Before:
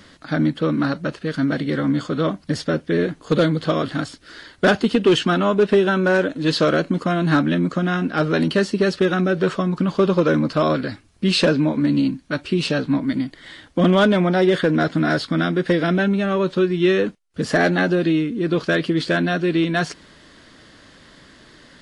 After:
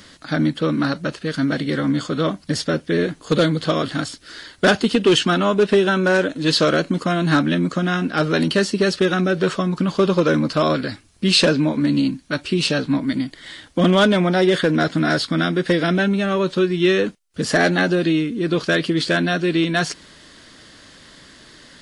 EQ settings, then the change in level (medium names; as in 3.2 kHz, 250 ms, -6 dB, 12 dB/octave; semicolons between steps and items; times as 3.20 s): treble shelf 3.4 kHz +8.5 dB; 0.0 dB